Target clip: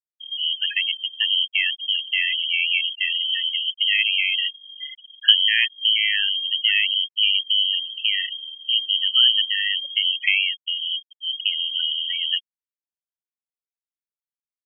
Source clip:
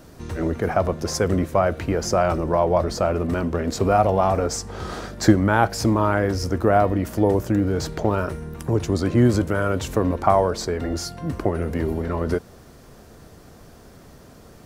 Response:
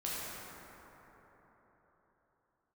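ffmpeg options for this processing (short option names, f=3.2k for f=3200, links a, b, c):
-af "lowpass=f=2.8k:t=q:w=0.5098,lowpass=f=2.8k:t=q:w=0.6013,lowpass=f=2.8k:t=q:w=0.9,lowpass=f=2.8k:t=q:w=2.563,afreqshift=-3300,equalizer=f=2.6k:w=4.6:g=-7,afftfilt=real='re*gte(hypot(re,im),0.112)':imag='im*gte(hypot(re,im),0.112)':win_size=1024:overlap=0.75,volume=2dB"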